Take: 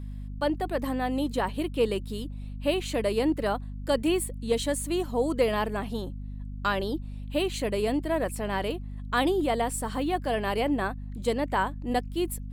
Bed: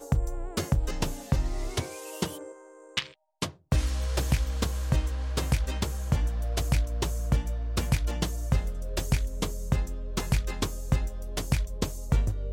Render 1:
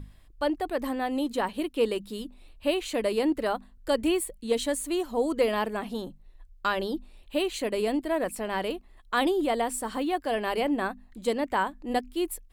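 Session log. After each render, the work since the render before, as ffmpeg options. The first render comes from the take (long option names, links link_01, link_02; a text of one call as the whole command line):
ffmpeg -i in.wav -af "bandreject=frequency=50:width_type=h:width=6,bandreject=frequency=100:width_type=h:width=6,bandreject=frequency=150:width_type=h:width=6,bandreject=frequency=200:width_type=h:width=6,bandreject=frequency=250:width_type=h:width=6" out.wav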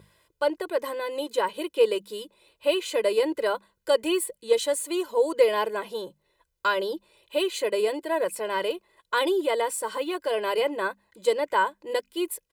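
ffmpeg -i in.wav -af "highpass=240,aecho=1:1:2:0.91" out.wav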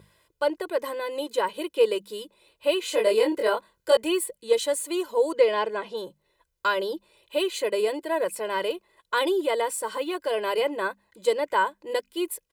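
ffmpeg -i in.wav -filter_complex "[0:a]asettb=1/sr,asplit=3[link_01][link_02][link_03];[link_01]atrim=end=2.814[link_04];[link_02]atrim=start=2.81:end=3.97,asetpts=PTS-STARTPTS,afade=type=in:duration=0.004:curve=qsin,afade=type=out:start_time=1.156:duration=0.004:curve=qsin,asplit=2[link_05][link_06];[link_06]adelay=23,volume=-2dB[link_07];[link_05][link_07]amix=inputs=2:normalize=0,atrim=end_sample=51156[link_08];[link_03]atrim=start=3.966[link_09];[link_04][link_08]acrossfade=duration=0.004:curve1=hsin:curve2=qsin[link_10];[link_10][link_09]acrossfade=duration=0.004:curve1=qsin:curve2=hsin,asplit=3[link_11][link_12][link_13];[link_11]afade=type=out:start_time=5.37:duration=0.02[link_14];[link_12]lowpass=5900,afade=type=in:start_time=5.37:duration=0.02,afade=type=out:start_time=5.96:duration=0.02[link_15];[link_13]afade=type=in:start_time=5.96:duration=0.02[link_16];[link_14][link_15][link_16]amix=inputs=3:normalize=0" out.wav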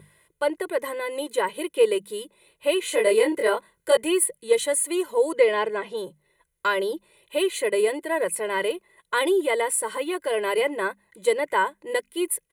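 ffmpeg -i in.wav -af "equalizer=frequency=160:width_type=o:width=0.33:gain=9,equalizer=frequency=400:width_type=o:width=0.33:gain=4,equalizer=frequency=2000:width_type=o:width=0.33:gain=8,equalizer=frequency=5000:width_type=o:width=0.33:gain=-8,equalizer=frequency=10000:width_type=o:width=0.33:gain=12" out.wav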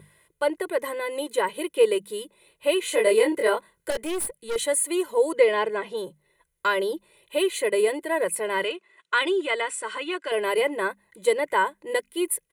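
ffmpeg -i in.wav -filter_complex "[0:a]asettb=1/sr,asplit=3[link_01][link_02][link_03];[link_01]atrim=end=3.904[link_04];[link_02]atrim=start=3.9:end=4.56,asetpts=PTS-STARTPTS,afade=type=in:duration=0.004:curve=qsin,afade=type=out:start_time=0.656:duration=0.004:curve=qsin,aeval=exprs='(tanh(17.8*val(0)+0.45)-tanh(0.45))/17.8':channel_layout=same[link_05];[link_03]atrim=start=4.556[link_06];[link_04][link_05]acrossfade=duration=0.004:curve1=hsin:curve2=qsin[link_07];[link_07][link_06]acrossfade=duration=0.004:curve1=qsin:curve2=hsin,asettb=1/sr,asplit=3[link_08][link_09][link_10];[link_08]atrim=end=8.644[link_11];[link_09]atrim=start=8.64:end=10.32,asetpts=PTS-STARTPTS,afade=type=in:duration=0.004:curve=qsin,afade=type=out:start_time=1.676:duration=0.004:curve=qsin,highpass=300,equalizer=frequency=510:width_type=q:width=4:gain=-8,equalizer=frequency=830:width_type=q:width=4:gain=-6,equalizer=frequency=1400:width_type=q:width=4:gain=5,equalizer=frequency=2700:width_type=q:width=4:gain=6,lowpass=frequency=7700:width=0.5412,lowpass=frequency=7700:width=1.3066[link_12];[link_10]atrim=start=10.316[link_13];[link_11][link_12]acrossfade=duration=0.004:curve1=hsin:curve2=qsin[link_14];[link_14][link_13]acrossfade=duration=0.004:curve1=qsin:curve2=hsin" out.wav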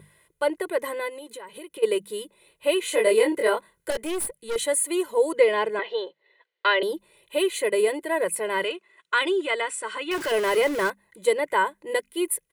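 ffmpeg -i in.wav -filter_complex "[0:a]asplit=3[link_01][link_02][link_03];[link_01]afade=type=out:start_time=1.08:duration=0.02[link_04];[link_02]acompressor=threshold=-37dB:ratio=6:attack=3.2:release=140:knee=1:detection=peak,afade=type=in:start_time=1.08:duration=0.02,afade=type=out:start_time=1.82:duration=0.02[link_05];[link_03]afade=type=in:start_time=1.82:duration=0.02[link_06];[link_04][link_05][link_06]amix=inputs=3:normalize=0,asettb=1/sr,asplit=3[link_07][link_08][link_09];[link_07]atrim=end=5.794[link_10];[link_08]atrim=start=5.79:end=6.83,asetpts=PTS-STARTPTS,afade=type=in:duration=0.004:curve=qsin,afade=type=out:start_time=1.036:duration=0.004:curve=qsin,highpass=frequency=360:width=0.5412,highpass=frequency=360:width=1.3066,equalizer=frequency=470:width_type=q:width=4:gain=4,equalizer=frequency=740:width_type=q:width=4:gain=4,equalizer=frequency=1900:width_type=q:width=4:gain=7,equalizer=frequency=3000:width_type=q:width=4:gain=7,equalizer=frequency=4200:width_type=q:width=4:gain=6,lowpass=frequency=4400:width=0.5412,lowpass=frequency=4400:width=1.3066[link_11];[link_09]atrim=start=6.826[link_12];[link_10][link_11]acrossfade=duration=0.004:curve1=hsin:curve2=qsin[link_13];[link_13][link_12]acrossfade=duration=0.004:curve1=qsin:curve2=hsin,asettb=1/sr,asplit=3[link_14][link_15][link_16];[link_14]atrim=end=10.114[link_17];[link_15]atrim=start=10.11:end=10.9,asetpts=PTS-STARTPTS,afade=type=in:duration=0.004:curve=qsin,afade=type=out:start_time=0.786:duration=0.004:curve=qsin,aeval=exprs='val(0)+0.5*0.0398*sgn(val(0))':channel_layout=same[link_18];[link_16]atrim=start=10.896[link_19];[link_17][link_18]acrossfade=duration=0.004:curve1=hsin:curve2=qsin[link_20];[link_20][link_19]acrossfade=duration=0.004:curve1=qsin:curve2=hsin" out.wav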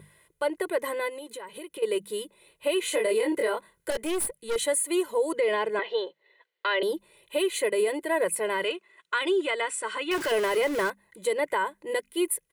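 ffmpeg -i in.wav -af "alimiter=limit=-17dB:level=0:latency=1:release=117" out.wav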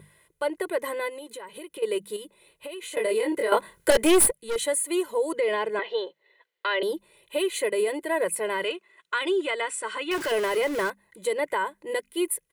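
ffmpeg -i in.wav -filter_complex "[0:a]asettb=1/sr,asplit=3[link_01][link_02][link_03];[link_01]atrim=end=2.164[link_04];[link_02]atrim=start=2.16:end=2.97,asetpts=PTS-STARTPTS,afade=type=in:duration=0.004:curve=qsin,afade=type=out:start_time=0.806:duration=0.004:curve=qsin,acompressor=threshold=-34dB:ratio=10:attack=3.2:release=140:knee=1:detection=peak[link_05];[link_03]atrim=start=2.966[link_06];[link_04][link_05]acrossfade=duration=0.004:curve1=hsin:curve2=qsin[link_07];[link_07][link_06]acrossfade=duration=0.004:curve1=qsin:curve2=hsin,asplit=3[link_08][link_09][link_10];[link_08]atrim=end=3.522[link_11];[link_09]atrim=start=3.518:end=4.322,asetpts=PTS-STARTPTS,volume=10.5dB[link_12];[link_10]atrim=start=4.318[link_13];[link_11][link_12]acrossfade=duration=0.004:curve1=hsin:curve2=hsin[link_14];[link_14][link_13]acrossfade=duration=0.004:curve1=hsin:curve2=hsin" out.wav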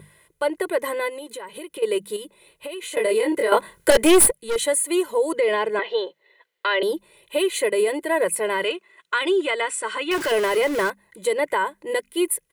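ffmpeg -i in.wav -af "volume=4.5dB,alimiter=limit=-3dB:level=0:latency=1" out.wav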